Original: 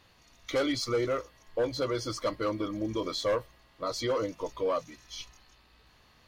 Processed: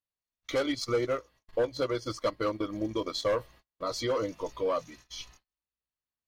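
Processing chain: gate -53 dBFS, range -39 dB; 0.56–3.28 s: transient shaper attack +2 dB, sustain -10 dB

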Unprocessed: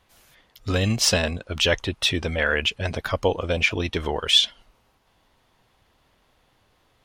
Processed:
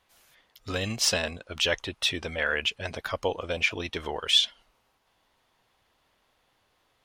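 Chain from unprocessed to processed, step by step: bass shelf 310 Hz -8.5 dB; trim -4 dB

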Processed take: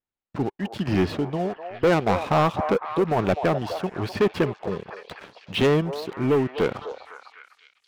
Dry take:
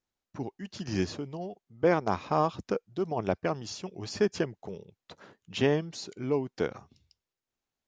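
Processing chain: low-pass 3.6 kHz 24 dB/octave; waveshaping leveller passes 3; repeats whose band climbs or falls 252 ms, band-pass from 710 Hz, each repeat 0.7 oct, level -5.5 dB

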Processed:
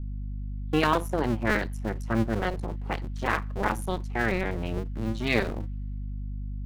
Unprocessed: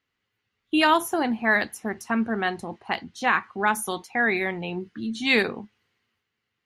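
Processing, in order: cycle switcher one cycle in 2, muted; hum 50 Hz, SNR 10 dB; tilt EQ -2 dB/octave; trim -2 dB

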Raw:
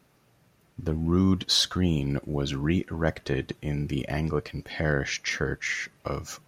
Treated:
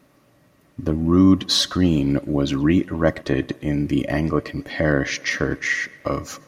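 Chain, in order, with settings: small resonant body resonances 290/580/1100/1900 Hz, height 10 dB, ringing for 45 ms; tape echo 120 ms, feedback 64%, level -22 dB, low-pass 5.1 kHz; trim +3.5 dB

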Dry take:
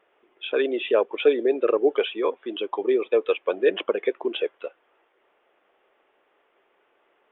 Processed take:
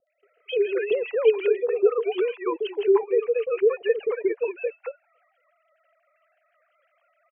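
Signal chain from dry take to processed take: formants replaced by sine waves; in parallel at +2 dB: compression, threshold -29 dBFS, peak gain reduction 17 dB; on the sum: three bands offset in time lows, highs, mids 70/230 ms, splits 520/2500 Hz; tape noise reduction on one side only encoder only

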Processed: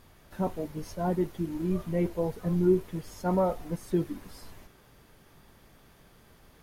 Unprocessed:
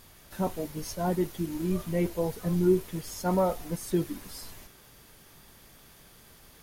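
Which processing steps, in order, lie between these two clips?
treble shelf 2.9 kHz -11 dB

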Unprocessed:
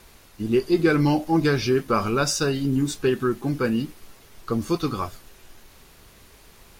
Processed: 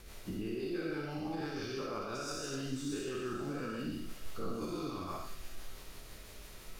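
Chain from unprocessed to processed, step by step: every event in the spectrogram widened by 240 ms; compression 2:1, threshold -31 dBFS, peak gain reduction 12 dB; peak limiter -24 dBFS, peak gain reduction 10 dB; rotary cabinet horn 6 Hz; feedback echo behind a high-pass 196 ms, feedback 76%, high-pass 2.2 kHz, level -12 dB; reverberation RT60 0.40 s, pre-delay 20 ms, DRR 0.5 dB; trim -7 dB

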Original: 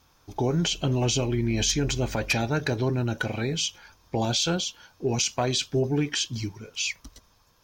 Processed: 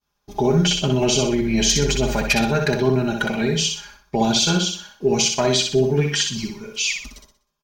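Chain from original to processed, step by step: expander -49 dBFS; comb 4.9 ms, depth 80%; feedback delay 62 ms, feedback 37%, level -5 dB; trim +3.5 dB

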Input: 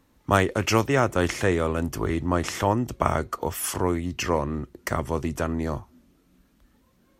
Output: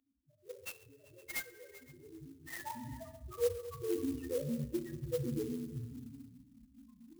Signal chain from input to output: in parallel at +3 dB: peak limiter -11.5 dBFS, peak gain reduction 8 dB; on the sum: compressor with a negative ratio -27 dBFS, ratio -1; loudest bins only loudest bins 1; band-pass sweep 3.2 kHz -> 400 Hz, 1.66–3.22 s; repeats whose band climbs or falls 129 ms, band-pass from 680 Hz, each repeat 0.7 oct, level -11 dB; on a send at -4.5 dB: reverberation RT60 1.2 s, pre-delay 3 ms; on the sum: sampling jitter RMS 0.059 ms; trim +6.5 dB

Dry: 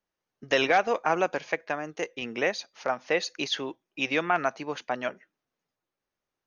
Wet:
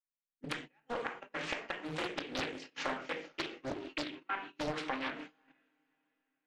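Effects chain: sawtooth pitch modulation +2 st, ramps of 901 ms; FFT filter 110 Hz 0 dB, 630 Hz -26 dB, 3.2 kHz -7 dB; inverted gate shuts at -30 dBFS, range -37 dB; level rider gain up to 11 dB; three-band isolator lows -24 dB, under 270 Hz, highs -18 dB, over 2.3 kHz; compression 10:1, threshold -51 dBFS, peak gain reduction 18 dB; on a send: echo that smears into a reverb 505 ms, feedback 41%, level -13 dB; on the sum: simulated room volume 720 m³, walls furnished, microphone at 2.3 m; gate -60 dBFS, range -22 dB; loudspeaker Doppler distortion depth 0.93 ms; trim +14.5 dB

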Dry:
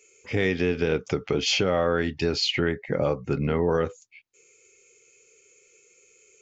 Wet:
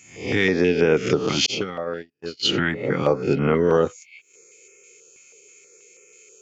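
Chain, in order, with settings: reverse spectral sustain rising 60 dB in 0.51 s; 1.46–2.45 s: gate -19 dBFS, range -58 dB; Bessel high-pass 180 Hz, order 2; step-sequenced notch 6.2 Hz 440–4000 Hz; trim +6.5 dB

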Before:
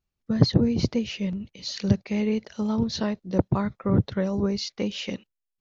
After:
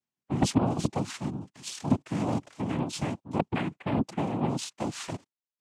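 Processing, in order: Chebyshev shaper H 4 -14 dB, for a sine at -4.5 dBFS; noise-vocoded speech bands 4; trim -5 dB

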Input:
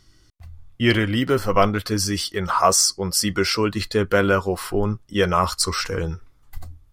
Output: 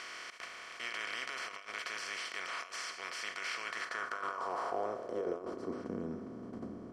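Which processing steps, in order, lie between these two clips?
spectral levelling over time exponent 0.2; gate -5 dBFS, range -25 dB; compressor with a negative ratio -36 dBFS, ratio -1; band-pass sweep 2.3 kHz -> 230 Hz, 3.61–5.92 s; trim +6 dB

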